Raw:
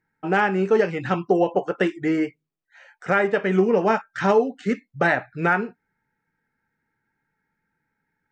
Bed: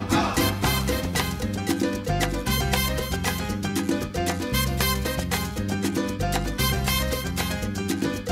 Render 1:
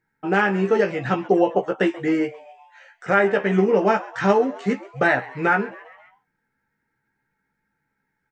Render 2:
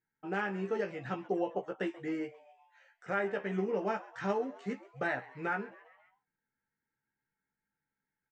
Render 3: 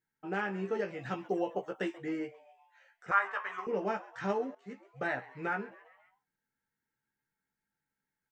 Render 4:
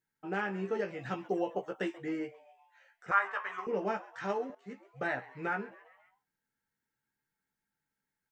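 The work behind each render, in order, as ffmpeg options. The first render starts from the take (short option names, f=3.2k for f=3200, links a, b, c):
-filter_complex "[0:a]asplit=2[a][b];[b]adelay=15,volume=-6dB[c];[a][c]amix=inputs=2:normalize=0,asplit=5[d][e][f][g][h];[e]adelay=133,afreqshift=140,volume=-20dB[i];[f]adelay=266,afreqshift=280,volume=-25dB[j];[g]adelay=399,afreqshift=420,volume=-30.1dB[k];[h]adelay=532,afreqshift=560,volume=-35.1dB[l];[d][i][j][k][l]amix=inputs=5:normalize=0"
-af "volume=-15dB"
-filter_complex "[0:a]asettb=1/sr,asplit=3[a][b][c];[a]atrim=end=0.994[d];[b]atrim=start=0.99:end=1.98,asetpts=PTS-STARTPTS,afade=t=in:d=0.004:c=qsin,afade=t=out:st=0.986:d=0.004:c=qsin,highshelf=f=4.1k:g=7.5[e];[c]atrim=start=1.976[f];[d][e]acrossfade=d=0.004:c1=hsin:c2=qsin[g];[g][f]acrossfade=d=0.004:c1=qsin:c2=hsin,asettb=1/sr,asplit=3[h][i][j];[h]atrim=end=3.114[k];[i]atrim=start=3.11:end=3.67,asetpts=PTS-STARTPTS,afade=t=in:d=0.004:c=qsin,afade=t=out:st=0.556:d=0.004:c=qsin,highpass=f=1.1k:t=q:w=8.8[l];[j]atrim=start=3.666[m];[k][l]acrossfade=d=0.004:c1=hsin:c2=qsin[n];[n][m]acrossfade=d=0.004:c1=qsin:c2=hsin,asplit=2[o][p];[o]atrim=end=4.55,asetpts=PTS-STARTPTS,afade=t=out:st=4.546:d=0.004:c=hsin:silence=0.141254[q];[p]atrim=start=4.55,asetpts=PTS-STARTPTS,afade=t=in:d=0.57:silence=0.141254[r];[q][r]concat=n=2:v=0:a=1"
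-filter_complex "[0:a]asettb=1/sr,asplit=3[a][b][c];[a]atrim=end=4.054[d];[b]atrim=start=4.05:end=4.5,asetpts=PTS-STARTPTS,afade=t=in:d=0.004:c=qsin,afade=t=out:st=0.446:d=0.004:c=qsin,lowshelf=f=200:g=-10[e];[c]atrim=start=4.496[f];[d][e]acrossfade=d=0.004:c1=hsin:c2=qsin[g];[g][f]acrossfade=d=0.004:c1=qsin:c2=hsin"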